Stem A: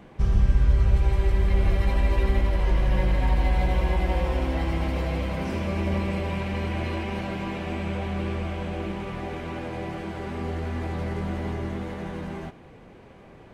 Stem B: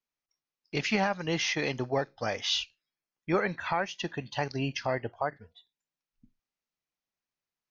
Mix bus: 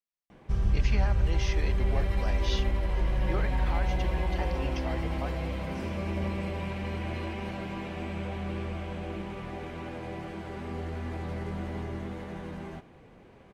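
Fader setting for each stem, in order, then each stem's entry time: -5.5, -8.5 dB; 0.30, 0.00 s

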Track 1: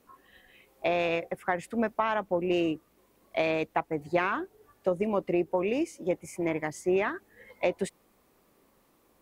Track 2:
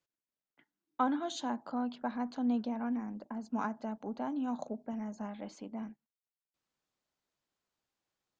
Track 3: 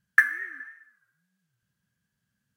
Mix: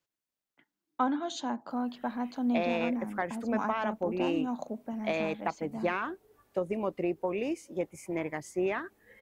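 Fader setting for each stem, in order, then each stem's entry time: -4.0 dB, +2.0 dB, off; 1.70 s, 0.00 s, off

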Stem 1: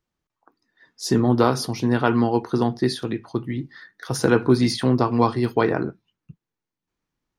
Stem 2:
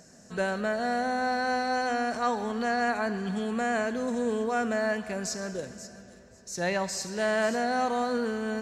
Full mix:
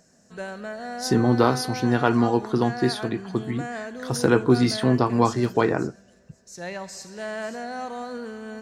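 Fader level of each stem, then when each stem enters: -1.0, -5.5 dB; 0.00, 0.00 s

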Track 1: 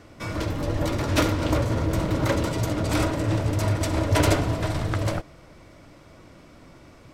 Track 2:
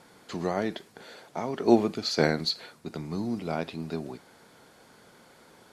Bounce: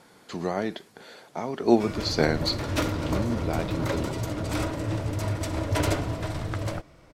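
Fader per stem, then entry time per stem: -5.0, +0.5 dB; 1.60, 0.00 s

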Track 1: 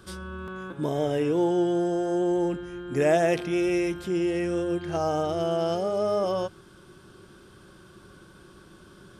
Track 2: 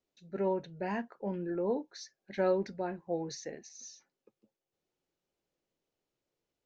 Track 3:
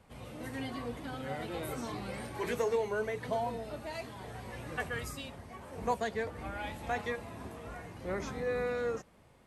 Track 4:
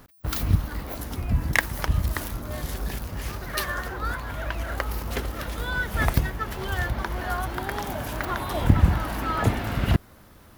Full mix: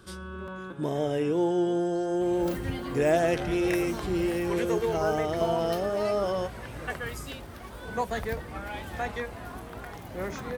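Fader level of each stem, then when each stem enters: -2.0, -14.0, +2.0, -15.0 dB; 0.00, 0.00, 2.10, 2.15 s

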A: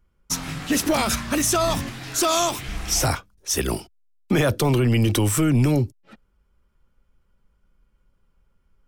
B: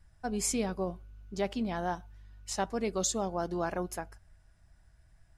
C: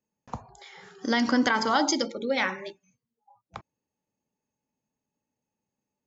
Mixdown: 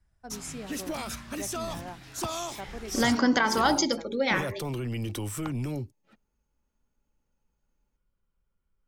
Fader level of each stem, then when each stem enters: -13.5, -9.0, 0.0 dB; 0.00, 0.00, 1.90 s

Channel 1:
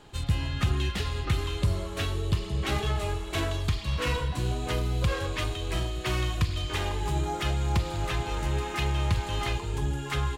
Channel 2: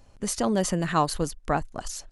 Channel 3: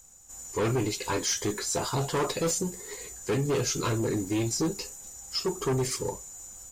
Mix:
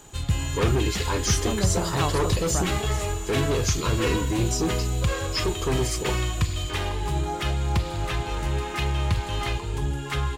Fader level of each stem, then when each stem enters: +2.0, -6.0, +1.5 dB; 0.00, 1.05, 0.00 s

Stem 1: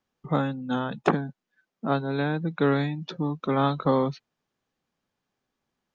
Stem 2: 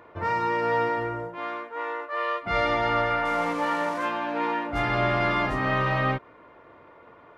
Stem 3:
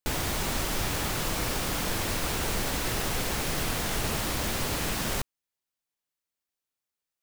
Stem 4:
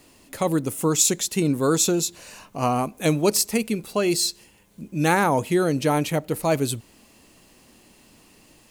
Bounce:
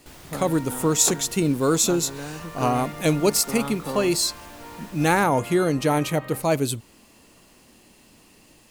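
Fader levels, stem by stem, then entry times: -9.0, -15.5, -16.0, 0.0 dB; 0.00, 0.25, 0.00, 0.00 s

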